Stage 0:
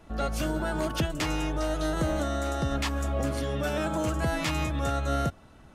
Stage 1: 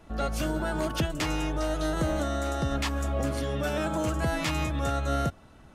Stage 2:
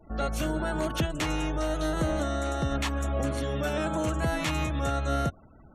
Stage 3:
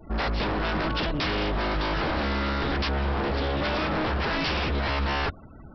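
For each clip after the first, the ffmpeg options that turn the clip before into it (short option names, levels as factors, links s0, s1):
-af anull
-af "bandreject=f=4900:w=8.5,afftfilt=real='re*gte(hypot(re,im),0.00316)':imag='im*gte(hypot(re,im),0.00316)':win_size=1024:overlap=0.75"
-af "equalizer=f=700:w=1.5:g=-3.5,aresample=11025,aeval=exprs='0.0335*(abs(mod(val(0)/0.0335+3,4)-2)-1)':c=same,aresample=44100,volume=2.51"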